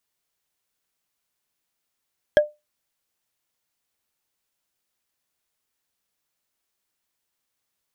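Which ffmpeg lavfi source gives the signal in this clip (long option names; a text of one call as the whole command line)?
ffmpeg -f lavfi -i "aevalsrc='0.422*pow(10,-3*t/0.21)*sin(2*PI*598*t)+0.178*pow(10,-3*t/0.062)*sin(2*PI*1648.7*t)+0.075*pow(10,-3*t/0.028)*sin(2*PI*3231.6*t)+0.0316*pow(10,-3*t/0.015)*sin(2*PI*5341.9*t)+0.0133*pow(10,-3*t/0.009)*sin(2*PI*7977.3*t)':duration=0.45:sample_rate=44100" out.wav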